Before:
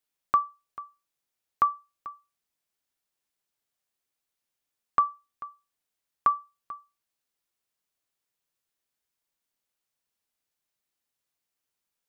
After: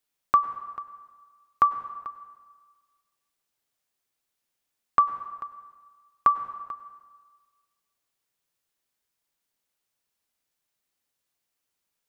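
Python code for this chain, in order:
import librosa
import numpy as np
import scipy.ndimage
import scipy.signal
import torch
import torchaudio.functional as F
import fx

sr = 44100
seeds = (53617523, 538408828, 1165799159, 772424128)

y = fx.rev_plate(x, sr, seeds[0], rt60_s=1.5, hf_ratio=0.8, predelay_ms=85, drr_db=12.0)
y = y * 10.0 ** (3.0 / 20.0)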